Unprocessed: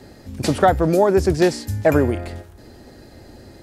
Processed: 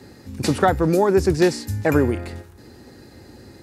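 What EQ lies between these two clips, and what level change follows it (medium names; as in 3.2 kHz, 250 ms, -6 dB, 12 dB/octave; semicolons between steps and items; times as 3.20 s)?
high-pass 69 Hz; peaking EQ 640 Hz -9.5 dB 0.3 oct; band-stop 3.2 kHz, Q 15; 0.0 dB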